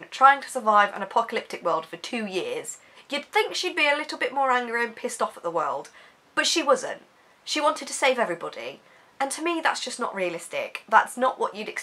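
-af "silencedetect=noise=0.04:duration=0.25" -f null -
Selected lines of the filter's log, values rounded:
silence_start: 2.71
silence_end: 3.10 | silence_duration: 0.40
silence_start: 5.80
silence_end: 6.37 | silence_duration: 0.57
silence_start: 6.93
silence_end: 7.48 | silence_duration: 0.55
silence_start: 8.70
silence_end: 9.20 | silence_duration: 0.50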